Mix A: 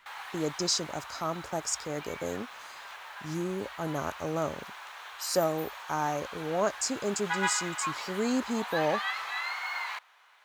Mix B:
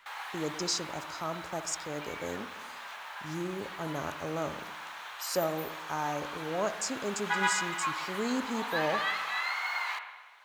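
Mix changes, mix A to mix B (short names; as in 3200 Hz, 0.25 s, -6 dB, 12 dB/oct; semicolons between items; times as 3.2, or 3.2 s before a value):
speech -4.0 dB; reverb: on, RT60 1.2 s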